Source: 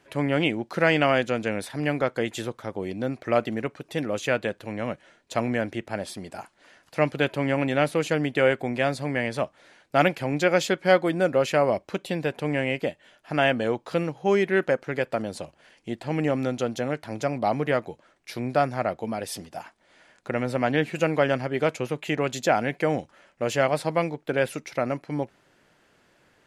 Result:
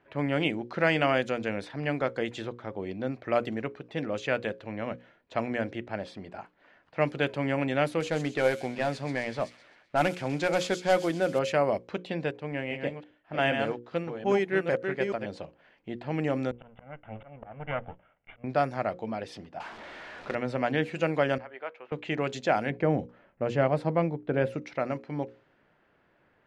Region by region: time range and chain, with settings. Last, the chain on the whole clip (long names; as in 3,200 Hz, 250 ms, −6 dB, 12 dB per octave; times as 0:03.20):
0:08.00–0:11.39: variable-slope delta modulation 64 kbit/s + delay with a high-pass on its return 129 ms, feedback 62%, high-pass 4,600 Hz, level −3.5 dB
0:12.31–0:15.26: delay that plays each chunk backwards 402 ms, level −4 dB + expander for the loud parts, over −35 dBFS
0:16.51–0:18.44: lower of the sound and its delayed copy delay 1.4 ms + Butterworth low-pass 3,300 Hz 96 dB per octave + volume swells 520 ms
0:19.60–0:20.35: converter with a step at zero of −34.5 dBFS + bass and treble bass −6 dB, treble +3 dB + log-companded quantiser 4 bits
0:21.38–0:21.92: high-pass filter 910 Hz + head-to-tape spacing loss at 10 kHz 37 dB
0:22.70–0:24.62: low-pass filter 1,600 Hz 6 dB per octave + low-shelf EQ 330 Hz +7.5 dB
whole clip: mains-hum notches 60/120/180/240/300/360/420/480/540 Hz; low-pass that shuts in the quiet parts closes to 2,200 Hz, open at −18 dBFS; high-shelf EQ 9,700 Hz −7.5 dB; level −3.5 dB